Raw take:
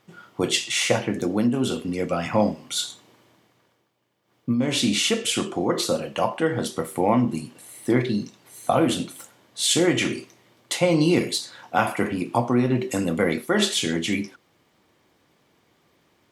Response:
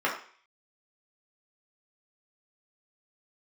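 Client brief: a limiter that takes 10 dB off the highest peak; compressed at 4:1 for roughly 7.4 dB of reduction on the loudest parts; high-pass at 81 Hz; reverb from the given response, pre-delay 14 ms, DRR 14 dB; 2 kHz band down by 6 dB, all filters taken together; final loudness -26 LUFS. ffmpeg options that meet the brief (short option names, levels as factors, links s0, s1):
-filter_complex "[0:a]highpass=81,equalizer=f=2000:t=o:g=-8,acompressor=threshold=0.0631:ratio=4,alimiter=limit=0.1:level=0:latency=1,asplit=2[s0][s1];[1:a]atrim=start_sample=2205,adelay=14[s2];[s1][s2]afir=irnorm=-1:irlink=0,volume=0.0473[s3];[s0][s3]amix=inputs=2:normalize=0,volume=1.78"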